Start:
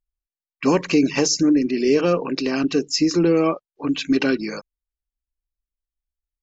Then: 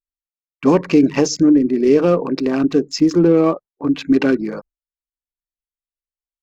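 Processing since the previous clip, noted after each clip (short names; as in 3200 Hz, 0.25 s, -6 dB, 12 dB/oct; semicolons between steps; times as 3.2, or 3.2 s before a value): Wiener smoothing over 15 samples; gate with hold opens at -33 dBFS; high shelf 2300 Hz -8.5 dB; gain +5 dB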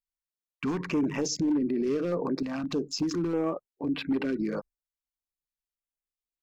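hard clip -8 dBFS, distortion -18 dB; limiter -18.5 dBFS, peak gain reduction 10.5 dB; stepped notch 3.3 Hz 390–6400 Hz; gain -3 dB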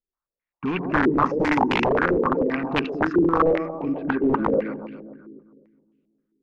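split-band echo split 360 Hz, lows 0.208 s, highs 0.133 s, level -6 dB; wrapped overs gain 20.5 dB; stepped low-pass 7.6 Hz 390–2700 Hz; gain +3.5 dB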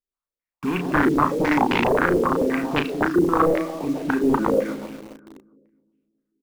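in parallel at -3 dB: bit-crush 6-bit; on the sum: doubler 34 ms -7 dB; gain -4.5 dB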